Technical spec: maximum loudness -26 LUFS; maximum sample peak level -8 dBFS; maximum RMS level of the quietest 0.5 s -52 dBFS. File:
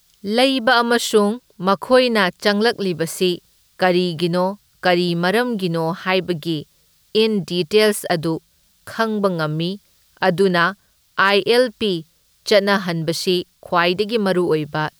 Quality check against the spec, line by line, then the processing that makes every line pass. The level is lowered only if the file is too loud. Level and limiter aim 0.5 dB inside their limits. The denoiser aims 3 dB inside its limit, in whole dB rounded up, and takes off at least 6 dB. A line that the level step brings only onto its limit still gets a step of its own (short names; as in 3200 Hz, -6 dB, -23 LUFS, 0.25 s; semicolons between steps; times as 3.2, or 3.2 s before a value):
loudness -18.5 LUFS: fail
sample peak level -3.5 dBFS: fail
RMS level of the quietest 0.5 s -58 dBFS: OK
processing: gain -8 dB